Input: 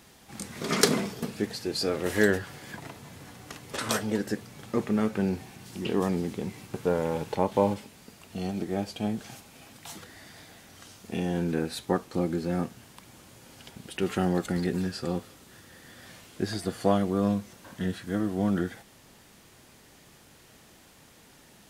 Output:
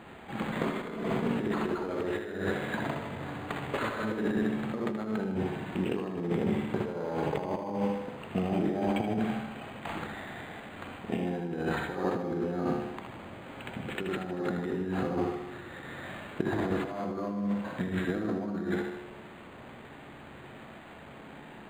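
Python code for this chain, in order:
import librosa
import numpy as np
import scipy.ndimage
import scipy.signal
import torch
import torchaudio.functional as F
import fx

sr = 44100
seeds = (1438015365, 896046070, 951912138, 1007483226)

y = fx.low_shelf(x, sr, hz=97.0, db=-10.5)
y = fx.hum_notches(y, sr, base_hz=50, count=10)
y = fx.room_flutter(y, sr, wall_m=11.0, rt60_s=0.61)
y = fx.over_compress(y, sr, threshold_db=-36.0, ratio=-1.0)
y = fx.air_absorb(y, sr, metres=120.0)
y = fx.echo_feedback(y, sr, ms=78, feedback_pct=58, wet_db=-9)
y = np.interp(np.arange(len(y)), np.arange(len(y))[::8], y[::8])
y = y * 10.0 ** (4.5 / 20.0)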